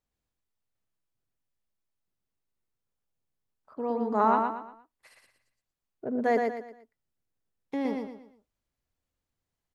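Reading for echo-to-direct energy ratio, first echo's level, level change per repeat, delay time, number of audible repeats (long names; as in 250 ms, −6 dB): −3.5 dB, −4.0 dB, −9.0 dB, 117 ms, 4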